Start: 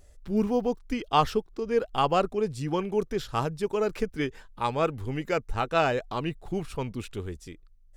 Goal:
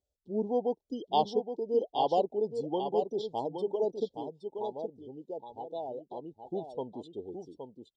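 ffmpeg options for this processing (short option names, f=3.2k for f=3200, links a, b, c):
-filter_complex "[0:a]asuperstop=centerf=1700:order=12:qfactor=0.76,asettb=1/sr,asplit=3[a][b][c];[a]atrim=end=4.174[d];[b]atrim=start=4.17:end=6.44,asetpts=PTS-STARTPTS,afade=t=in:d=0.004:c=qsin,afade=t=out:st=2.266:d=0.004:c=qsin,acompressor=threshold=-38dB:ratio=2.5[e];[c]atrim=start=6.436[f];[d][e]acrossfade=d=0.004:c1=hsin:c2=qsin[g];[g][f]acrossfade=d=0.004:c1=qsin:c2=hsin,afftdn=nr=23:nf=-42,highpass=320,lowpass=6.2k,aecho=1:1:819:0.422,volume=-1.5dB"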